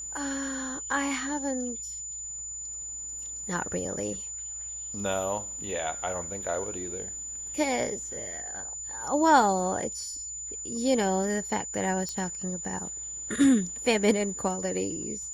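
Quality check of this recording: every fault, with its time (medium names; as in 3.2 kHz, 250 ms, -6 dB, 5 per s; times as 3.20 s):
whine 7 kHz -35 dBFS
12.09 s: pop -21 dBFS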